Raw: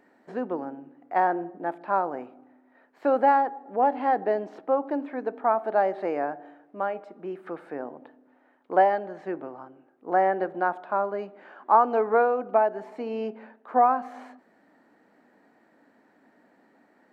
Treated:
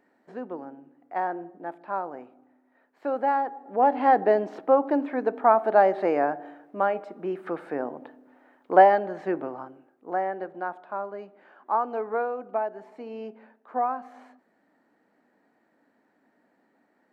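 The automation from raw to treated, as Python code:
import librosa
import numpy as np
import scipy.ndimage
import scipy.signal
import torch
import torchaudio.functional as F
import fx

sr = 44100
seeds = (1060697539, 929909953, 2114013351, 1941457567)

y = fx.gain(x, sr, db=fx.line((3.2, -5.5), (4.09, 4.5), (9.61, 4.5), (10.25, -6.5)))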